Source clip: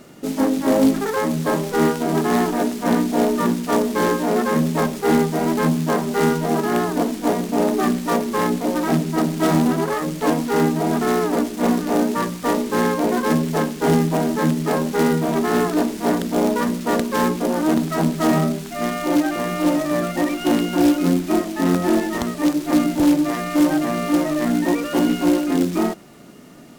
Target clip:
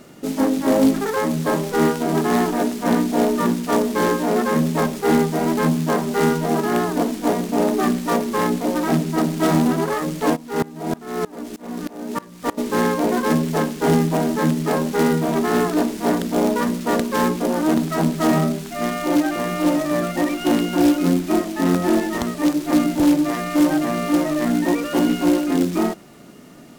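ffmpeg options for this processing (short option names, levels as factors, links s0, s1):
-filter_complex "[0:a]asplit=3[s0][s1][s2];[s0]afade=t=out:st=10.35:d=0.02[s3];[s1]aeval=exprs='val(0)*pow(10,-24*if(lt(mod(-3.2*n/s,1),2*abs(-3.2)/1000),1-mod(-3.2*n/s,1)/(2*abs(-3.2)/1000),(mod(-3.2*n/s,1)-2*abs(-3.2)/1000)/(1-2*abs(-3.2)/1000))/20)':c=same,afade=t=in:st=10.35:d=0.02,afade=t=out:st=12.57:d=0.02[s4];[s2]afade=t=in:st=12.57:d=0.02[s5];[s3][s4][s5]amix=inputs=3:normalize=0"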